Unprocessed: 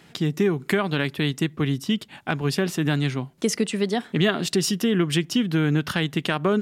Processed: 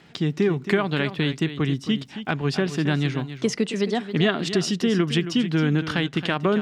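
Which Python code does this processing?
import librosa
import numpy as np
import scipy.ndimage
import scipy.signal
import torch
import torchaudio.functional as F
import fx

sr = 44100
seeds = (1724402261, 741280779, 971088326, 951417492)

y = scipy.signal.sosfilt(scipy.signal.butter(2, 5600.0, 'lowpass', fs=sr, output='sos'), x)
y = y + 10.0 ** (-11.5 / 20.0) * np.pad(y, (int(271 * sr / 1000.0), 0))[:len(y)]
y = fx.dmg_crackle(y, sr, seeds[0], per_s=47.0, level_db=-49.0)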